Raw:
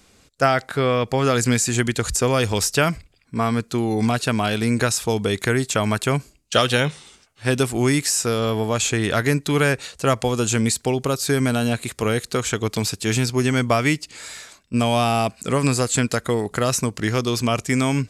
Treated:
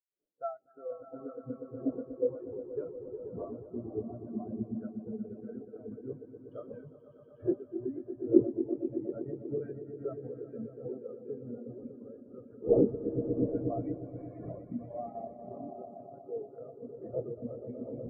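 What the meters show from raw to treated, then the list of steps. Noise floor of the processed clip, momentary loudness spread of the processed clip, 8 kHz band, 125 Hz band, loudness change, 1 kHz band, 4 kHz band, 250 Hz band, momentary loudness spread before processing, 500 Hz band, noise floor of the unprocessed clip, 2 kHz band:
-56 dBFS, 15 LU, under -40 dB, -22.0 dB, -15.5 dB, -24.5 dB, under -40 dB, -12.5 dB, 5 LU, -12.0 dB, -57 dBFS, under -40 dB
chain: recorder AGC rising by 62 dB/s; wind noise 450 Hz -22 dBFS; low-pass 1.7 kHz 6 dB/octave; bass shelf 330 Hz -10.5 dB; on a send: echo with a slow build-up 121 ms, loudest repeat 5, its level -5 dB; on the sum: spectral contrast expander 4:1; trim -6.5 dB

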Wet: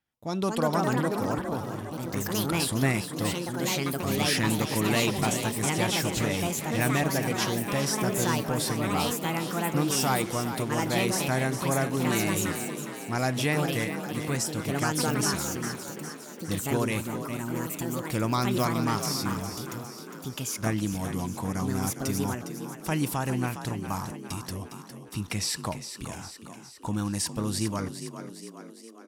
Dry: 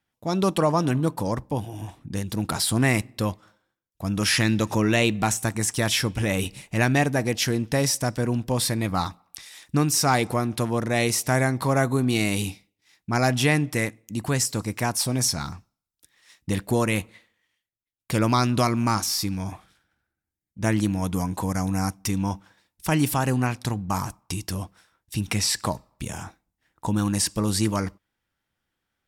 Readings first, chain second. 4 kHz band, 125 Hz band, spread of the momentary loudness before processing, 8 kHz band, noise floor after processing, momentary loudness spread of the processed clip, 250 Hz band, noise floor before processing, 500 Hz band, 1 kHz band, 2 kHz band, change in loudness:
-3.5 dB, -4.5 dB, 12 LU, -3.5 dB, -45 dBFS, 12 LU, -3.5 dB, -84 dBFS, -3.0 dB, -3.0 dB, -3.5 dB, -4.0 dB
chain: ever faster or slower copies 284 ms, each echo +4 st, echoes 2; frequency-shifting echo 408 ms, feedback 57%, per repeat +39 Hz, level -10 dB; trim -6 dB

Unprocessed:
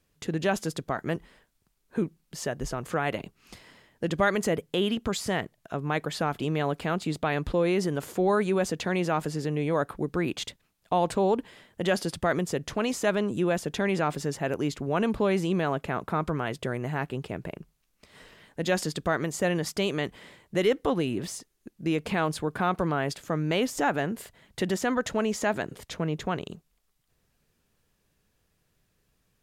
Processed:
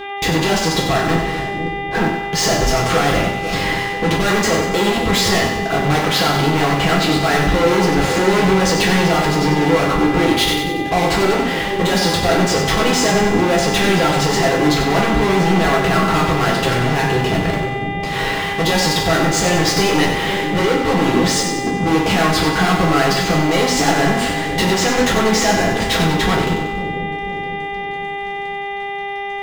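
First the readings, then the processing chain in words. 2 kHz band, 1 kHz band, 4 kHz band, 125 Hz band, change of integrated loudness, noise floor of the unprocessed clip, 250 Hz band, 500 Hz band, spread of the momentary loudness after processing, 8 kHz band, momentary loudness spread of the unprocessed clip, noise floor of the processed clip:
+15.5 dB, +14.5 dB, +18.5 dB, +13.0 dB, +12.5 dB, -73 dBFS, +12.0 dB, +11.0 dB, 7 LU, +16.5 dB, 9 LU, -25 dBFS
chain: low-pass 4.3 kHz 12 dB/octave; in parallel at +3 dB: compression, threshold -38 dBFS, peak gain reduction 18 dB; on the sum: peak limiter -17.5 dBFS, peak gain reduction 7 dB; waveshaping leveller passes 5; reverse; upward compressor, threshold -42 dBFS; reverse; mains buzz 400 Hz, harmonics 9, -33 dBFS -4 dB/octave; two-band feedback delay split 540 Hz, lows 497 ms, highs 94 ms, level -7 dB; two-slope reverb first 0.43 s, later 2.3 s, from -26 dB, DRR -3.5 dB

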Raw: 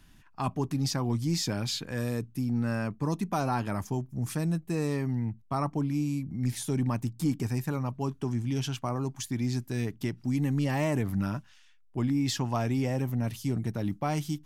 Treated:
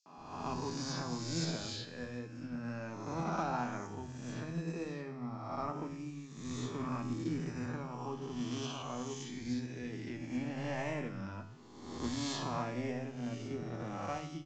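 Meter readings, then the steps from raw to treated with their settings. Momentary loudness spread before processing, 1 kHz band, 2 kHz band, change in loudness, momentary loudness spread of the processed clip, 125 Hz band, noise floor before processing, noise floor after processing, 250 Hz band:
5 LU, -5.0 dB, -5.5 dB, -9.0 dB, 7 LU, -12.5 dB, -57 dBFS, -50 dBFS, -9.0 dB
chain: reverse spectral sustain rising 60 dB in 1.65 s; resampled via 16 kHz; feedback comb 82 Hz, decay 0.82 s, harmonics all, mix 80%; three bands offset in time highs, mids, lows 60/170 ms, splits 160/5200 Hz; upward expansion 1.5:1, over -48 dBFS; trim +2 dB

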